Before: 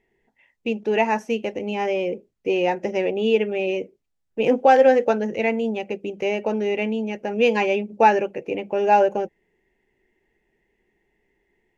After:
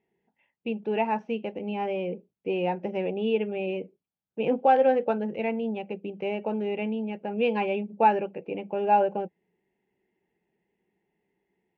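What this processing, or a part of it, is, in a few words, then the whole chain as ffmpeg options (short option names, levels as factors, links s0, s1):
guitar cabinet: -filter_complex "[0:a]asettb=1/sr,asplit=3[s0][s1][s2];[s0]atrim=end=6.954[s3];[s1]atrim=start=6.95:end=8.09,asetpts=PTS-STARTPTS,afade=t=in:d=0.004:c=qsin,afade=t=out:st=1.136:d=0.004:c=qsin,lowpass=f=6000:w=0.5412,lowpass=f=6000:w=1.3066[s4];[s2]atrim=start=8.086[s5];[s3][s4]acrossfade=d=0.004:c1=hsin:c2=qsin[s6];[s6][s5]acrossfade=d=0.004:c1=qsin:c2=hsin,highpass=97,equalizer=f=180:t=q:w=4:g=9,equalizer=f=830:t=q:w=4:g=3,equalizer=f=1900:t=q:w=4:g=-7,lowpass=f=3500:w=0.5412,lowpass=f=3500:w=1.3066,volume=0.447"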